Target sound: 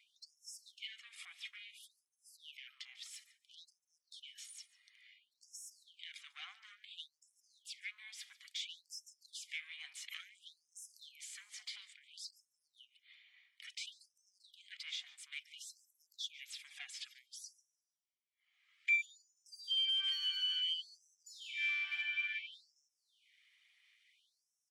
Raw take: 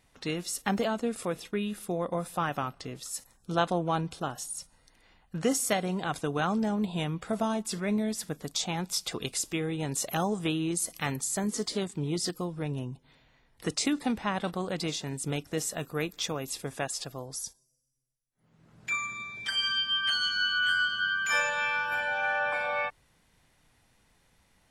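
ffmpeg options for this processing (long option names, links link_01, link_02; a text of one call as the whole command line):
ffmpeg -i in.wav -filter_complex "[0:a]aphaser=in_gain=1:out_gain=1:delay=2.5:decay=0.25:speed=0.67:type=sinusoidal,acompressor=threshold=-34dB:ratio=2,bass=frequency=250:gain=9,treble=frequency=4000:gain=3,bandreject=frequency=1500:width=5.9,asoftclip=type=tanh:threshold=-31dB,equalizer=frequency=180:width=0.87:gain=14,asettb=1/sr,asplit=3[link_01][link_02][link_03];[link_01]atrim=end=19.514[link_04];[link_02]atrim=start=19.51:end=22.02,asetpts=PTS-STARTPTS,afade=type=in:duration=0.004:curve=qsin,afade=type=out:start_time=2.506:duration=0.004:curve=qsin,asoftclip=type=hard:threshold=-35.5dB[link_05];[link_03]atrim=start=22.016[link_06];[link_04][link_05]acrossfade=duration=0.004:curve1=hsin:curve2=qsin[link_07];[link_07][link_06]acrossfade=duration=0.004:curve1=qsin:curve2=hsin,asplit=3[link_08][link_09][link_10];[link_08]bandpass=frequency=270:width_type=q:width=8,volume=0dB[link_11];[link_09]bandpass=frequency=2290:width_type=q:width=8,volume=-6dB[link_12];[link_10]bandpass=frequency=3010:width_type=q:width=8,volume=-9dB[link_13];[link_11][link_12][link_13]amix=inputs=3:normalize=0,aecho=1:1:145:0.1,afftfilt=real='re*gte(b*sr/1024,710*pow(5300/710,0.5+0.5*sin(2*PI*0.58*pts/sr)))':imag='im*gte(b*sr/1024,710*pow(5300/710,0.5+0.5*sin(2*PI*0.58*pts/sr)))':win_size=1024:overlap=0.75,volume=13dB" out.wav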